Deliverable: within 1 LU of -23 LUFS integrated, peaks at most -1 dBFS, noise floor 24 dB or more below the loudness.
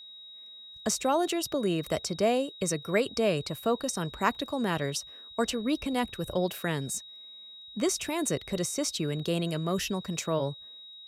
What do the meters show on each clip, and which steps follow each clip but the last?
steady tone 3.8 kHz; tone level -45 dBFS; loudness -30.0 LUFS; peak level -9.5 dBFS; loudness target -23.0 LUFS
-> band-stop 3.8 kHz, Q 30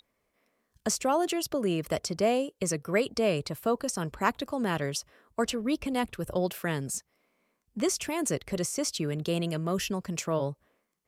steady tone not found; loudness -30.0 LUFS; peak level -9.5 dBFS; loudness target -23.0 LUFS
-> trim +7 dB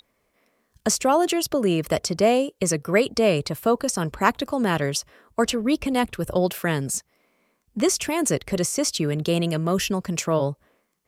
loudness -23.0 LUFS; peak level -2.5 dBFS; noise floor -71 dBFS

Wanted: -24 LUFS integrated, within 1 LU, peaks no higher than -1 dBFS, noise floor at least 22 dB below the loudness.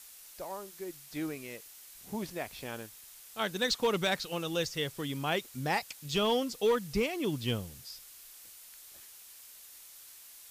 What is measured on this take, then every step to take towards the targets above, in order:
clipped samples 0.2%; clipping level -21.0 dBFS; noise floor -53 dBFS; noise floor target -56 dBFS; loudness -33.5 LUFS; peak level -21.0 dBFS; loudness target -24.0 LUFS
-> clip repair -21 dBFS; noise print and reduce 6 dB; trim +9.5 dB

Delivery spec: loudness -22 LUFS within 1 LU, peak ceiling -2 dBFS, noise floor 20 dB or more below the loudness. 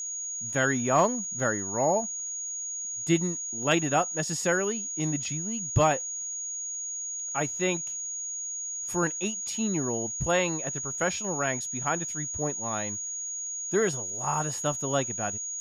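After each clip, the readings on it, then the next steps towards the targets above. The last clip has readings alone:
tick rate 34 per s; steady tone 6.7 kHz; tone level -32 dBFS; loudness -28.0 LUFS; peak level -12.5 dBFS; loudness target -22.0 LUFS
-> de-click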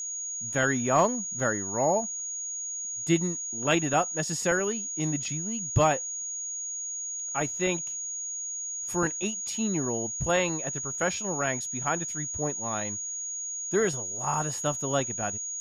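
tick rate 0.19 per s; steady tone 6.7 kHz; tone level -32 dBFS
-> band-stop 6.7 kHz, Q 30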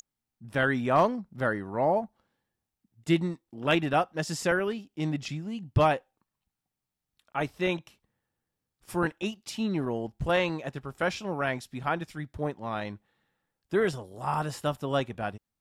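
steady tone not found; loudness -29.5 LUFS; peak level -13.5 dBFS; loudness target -22.0 LUFS
-> trim +7.5 dB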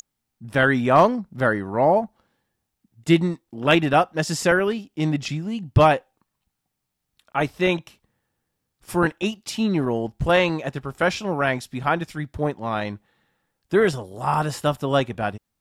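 loudness -22.0 LUFS; peak level -6.0 dBFS; noise floor -80 dBFS

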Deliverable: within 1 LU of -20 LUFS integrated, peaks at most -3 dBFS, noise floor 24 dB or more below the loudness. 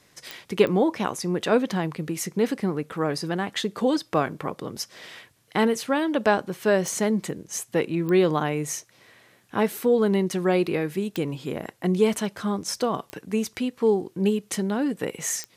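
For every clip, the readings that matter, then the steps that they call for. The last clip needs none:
clicks found 7; loudness -25.5 LUFS; peak level -6.0 dBFS; loudness target -20.0 LUFS
-> de-click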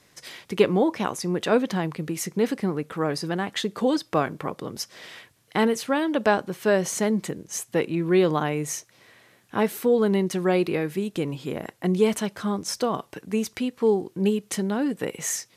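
clicks found 0; loudness -25.5 LUFS; peak level -6.0 dBFS; loudness target -20.0 LUFS
-> trim +5.5 dB; peak limiter -3 dBFS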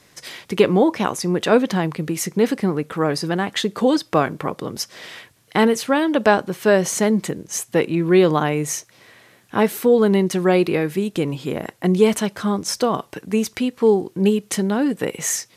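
loudness -20.0 LUFS; peak level -3.0 dBFS; noise floor -55 dBFS

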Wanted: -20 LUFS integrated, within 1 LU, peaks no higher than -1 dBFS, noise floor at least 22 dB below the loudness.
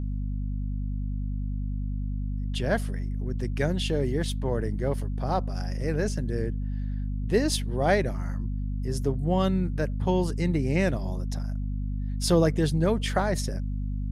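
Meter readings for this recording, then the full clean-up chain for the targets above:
hum 50 Hz; highest harmonic 250 Hz; hum level -27 dBFS; loudness -28.5 LUFS; peak level -10.0 dBFS; loudness target -20.0 LUFS
-> de-hum 50 Hz, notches 5; trim +8.5 dB

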